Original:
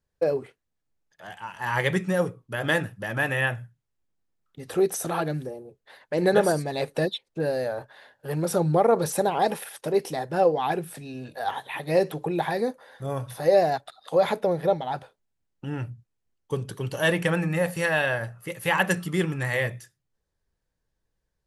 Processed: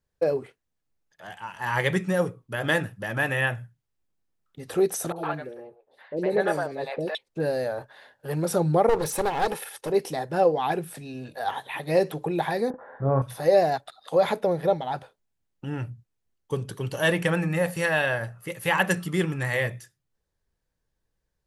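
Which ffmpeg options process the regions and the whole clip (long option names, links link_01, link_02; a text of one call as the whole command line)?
ffmpeg -i in.wav -filter_complex "[0:a]asettb=1/sr,asplit=3[link_01][link_02][link_03];[link_01]atrim=end=5.124[link_04];[link_02]atrim=start=5.12:end=7.15,asetpts=PTS-STARTPTS,afade=type=in:duration=0.004:curve=qsin,afade=type=out:start_time=2.026:duration=0.004:curve=qsin,bass=frequency=250:gain=-9,treble=frequency=4000:gain=-12,acrossover=split=590|4400[link_05][link_06][link_07];[link_07]adelay=40[link_08];[link_06]adelay=110[link_09];[link_05][link_09][link_08]amix=inputs=3:normalize=0,atrim=end_sample=89523[link_10];[link_03]atrim=start=7.146[link_11];[link_04][link_10]acrossfade=duration=0.004:curve1=hsin:curve2=qsin[link_12];[link_12][link_11]acrossfade=duration=0.004:curve1=qsin:curve2=hsin,asettb=1/sr,asplit=3[link_13][link_14][link_15];[link_13]atrim=end=8.894[link_16];[link_14]atrim=start=8.89:end=9.9,asetpts=PTS-STARTPTS,afade=type=in:duration=0.004:curve=qsin,afade=type=out:start_time=1.006:duration=0.004:curve=qsin,aecho=1:1:2.3:0.35,atrim=end_sample=44541,aeval=exprs='clip(val(0),-1,0.0447)':channel_layout=same[link_17];[link_15]atrim=start=9.896[link_18];[link_16][link_17]acrossfade=duration=0.004:curve1=hsin:curve2=qsin[link_19];[link_19][link_18]acrossfade=duration=0.004:curve1=qsin:curve2=hsin,asettb=1/sr,asplit=3[link_20][link_21][link_22];[link_20]atrim=end=12.704[link_23];[link_21]atrim=start=12.7:end=13.22,asetpts=PTS-STARTPTS,afade=type=in:duration=0.004:curve=qsin,afade=type=out:start_time=0.516:duration=0.004:curve=qsin,lowpass=frequency=1500:width=0.5412,lowpass=frequency=1500:width=1.3066,acontrast=58,asplit=2[link_24][link_25];[link_25]adelay=37,volume=-7dB[link_26];[link_24][link_26]amix=inputs=2:normalize=0,atrim=end_sample=22932[link_27];[link_22]atrim=start=13.216[link_28];[link_23][link_27]acrossfade=duration=0.004:curve1=hsin:curve2=qsin[link_29];[link_29][link_28]acrossfade=duration=0.004:curve1=qsin:curve2=hsin" out.wav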